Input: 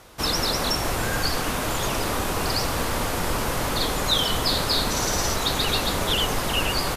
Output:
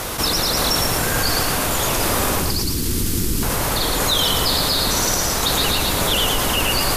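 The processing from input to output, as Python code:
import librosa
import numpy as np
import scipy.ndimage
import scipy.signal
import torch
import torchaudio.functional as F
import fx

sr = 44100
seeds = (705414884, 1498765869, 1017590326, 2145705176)

y = fx.high_shelf(x, sr, hz=8100.0, db=9.0)
y = fx.tremolo_random(y, sr, seeds[0], hz=3.5, depth_pct=55)
y = fx.curve_eq(y, sr, hz=(360.0, 610.0, 4700.0), db=(0, -26, -4), at=(2.39, 3.43))
y = fx.echo_feedback(y, sr, ms=113, feedback_pct=34, wet_db=-5.5)
y = fx.env_flatten(y, sr, amount_pct=70)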